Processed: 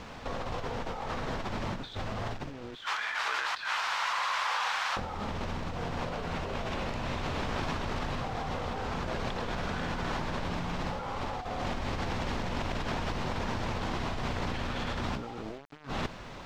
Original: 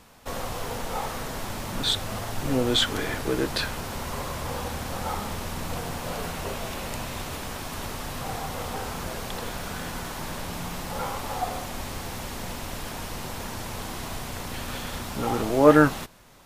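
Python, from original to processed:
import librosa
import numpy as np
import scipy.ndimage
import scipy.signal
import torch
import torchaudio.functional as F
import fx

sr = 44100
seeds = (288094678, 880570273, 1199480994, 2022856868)

y = fx.highpass(x, sr, hz=1000.0, slope=24, at=(2.75, 4.97))
y = fx.over_compress(y, sr, threshold_db=-38.0, ratio=-1.0)
y = fx.quant_dither(y, sr, seeds[0], bits=8, dither='none')
y = fx.air_absorb(y, sr, metres=170.0)
y = y * 10.0 ** (3.5 / 20.0)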